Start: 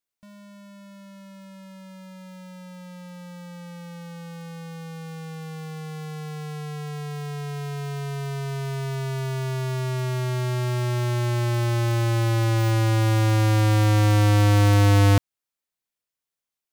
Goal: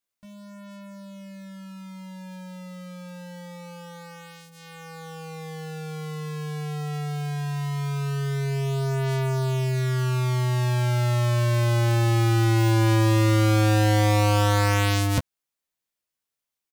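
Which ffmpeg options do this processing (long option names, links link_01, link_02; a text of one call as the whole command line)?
ffmpeg -i in.wav -af "aecho=1:1:15|27:0.596|0.188" out.wav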